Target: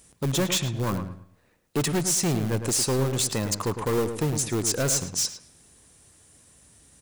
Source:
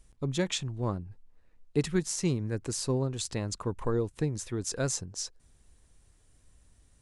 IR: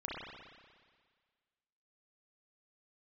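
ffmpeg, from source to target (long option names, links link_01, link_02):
-filter_complex "[0:a]highpass=120,asplit=2[link_01][link_02];[link_02]aeval=exprs='(mod(33.5*val(0)+1,2)-1)/33.5':channel_layout=same,volume=-11dB[link_03];[link_01][link_03]amix=inputs=2:normalize=0,highshelf=frequency=7600:gain=10,asoftclip=type=hard:threshold=-28dB,asplit=2[link_04][link_05];[link_05]adelay=108,lowpass=frequency=2500:poles=1,volume=-8dB,asplit=2[link_06][link_07];[link_07]adelay=108,lowpass=frequency=2500:poles=1,volume=0.27,asplit=2[link_08][link_09];[link_09]adelay=108,lowpass=frequency=2500:poles=1,volume=0.27[link_10];[link_04][link_06][link_08][link_10]amix=inputs=4:normalize=0,asplit=2[link_11][link_12];[1:a]atrim=start_sample=2205,asetrate=74970,aresample=44100[link_13];[link_12][link_13]afir=irnorm=-1:irlink=0,volume=-19.5dB[link_14];[link_11][link_14]amix=inputs=2:normalize=0,volume=7dB"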